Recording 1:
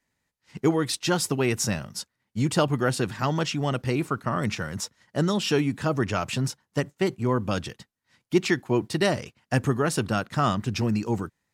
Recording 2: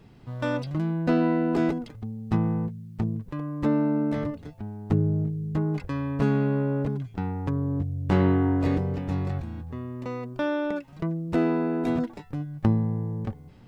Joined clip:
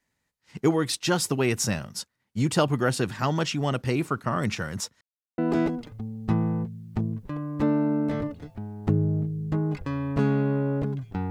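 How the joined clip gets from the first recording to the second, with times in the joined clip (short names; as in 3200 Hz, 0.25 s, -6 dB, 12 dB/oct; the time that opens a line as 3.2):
recording 1
5.01–5.38 mute
5.38 switch to recording 2 from 1.41 s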